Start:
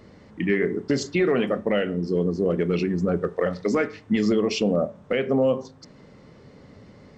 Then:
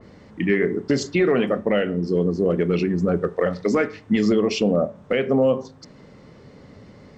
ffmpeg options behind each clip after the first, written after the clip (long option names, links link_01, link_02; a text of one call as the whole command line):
ffmpeg -i in.wav -af "adynamicequalizer=threshold=0.0112:dfrequency=2700:dqfactor=0.7:tfrequency=2700:tqfactor=0.7:attack=5:release=100:ratio=0.375:range=1.5:mode=cutabove:tftype=highshelf,volume=2.5dB" out.wav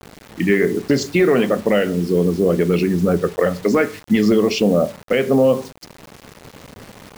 ffmpeg -i in.wav -af "acrusher=bits=6:mix=0:aa=0.000001,volume=4dB" out.wav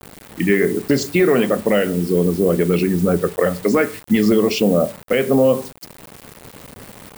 ffmpeg -i in.wav -af "aexciter=amount=3:drive=2.4:freq=8100" out.wav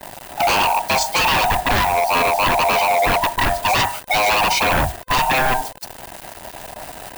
ffmpeg -i in.wav -af "afftfilt=real='real(if(lt(b,1008),b+24*(1-2*mod(floor(b/24),2)),b),0)':imag='imag(if(lt(b,1008),b+24*(1-2*mod(floor(b/24),2)),b),0)':win_size=2048:overlap=0.75,aeval=exprs='0.15*(abs(mod(val(0)/0.15+3,4)-2)-1)':channel_layout=same,volume=5dB" out.wav